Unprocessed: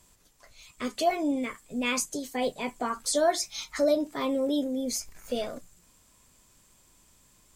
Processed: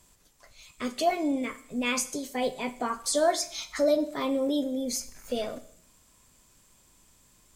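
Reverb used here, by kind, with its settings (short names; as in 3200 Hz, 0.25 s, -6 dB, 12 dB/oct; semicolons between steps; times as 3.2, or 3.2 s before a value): Schroeder reverb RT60 0.66 s, combs from 29 ms, DRR 14 dB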